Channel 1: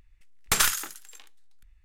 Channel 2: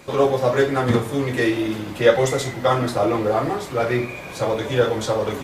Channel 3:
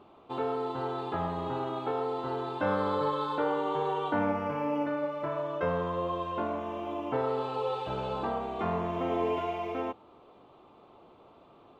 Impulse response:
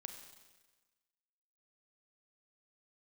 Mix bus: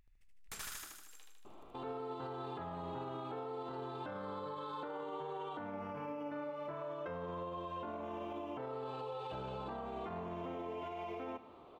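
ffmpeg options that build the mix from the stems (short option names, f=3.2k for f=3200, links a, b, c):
-filter_complex "[0:a]acompressor=threshold=-36dB:ratio=2,volume=-12.5dB,asplit=2[a][b];[b]volume=-3.5dB[c];[2:a]acompressor=threshold=-37dB:ratio=6,adelay=1450,volume=-3.5dB,asplit=3[d][e][f];[e]volume=-5.5dB[g];[f]volume=-15dB[h];[3:a]atrim=start_sample=2205[i];[g][i]afir=irnorm=-1:irlink=0[j];[c][h]amix=inputs=2:normalize=0,aecho=0:1:77|154|231|308|385|462|539|616|693:1|0.58|0.336|0.195|0.113|0.0656|0.0381|0.0221|0.0128[k];[a][d][j][k]amix=inputs=4:normalize=0,alimiter=level_in=11dB:limit=-24dB:level=0:latency=1:release=21,volume=-11dB"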